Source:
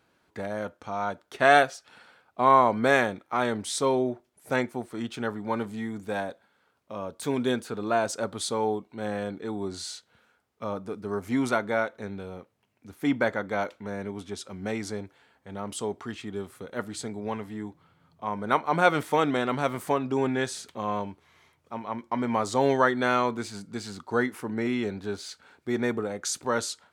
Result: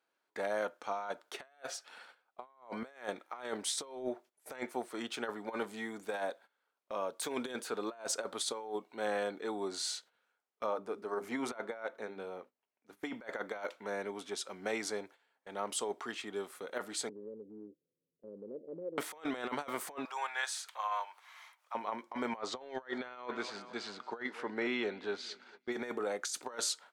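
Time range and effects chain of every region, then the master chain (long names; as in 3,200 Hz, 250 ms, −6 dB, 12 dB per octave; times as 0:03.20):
0:10.66–0:13.03: high-shelf EQ 2,500 Hz −7 dB + mains-hum notches 50/100/150/200/250/300/350/400 Hz
0:17.09–0:18.98: Butterworth low-pass 530 Hz 72 dB per octave + downward compressor 2.5 to 1, threshold −39 dBFS
0:20.05–0:21.75: high-pass filter 820 Hz 24 dB per octave + parametric band 5,500 Hz −3 dB 2.8 octaves + upward compression, threshold −43 dBFS
0:22.37–0:25.72: Chebyshev low-pass filter 3,700 Hz + repeating echo 224 ms, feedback 60%, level −23 dB
whole clip: high-pass filter 430 Hz 12 dB per octave; noise gate −54 dBFS, range −14 dB; compressor whose output falls as the input rises −33 dBFS, ratio −0.5; level −4.5 dB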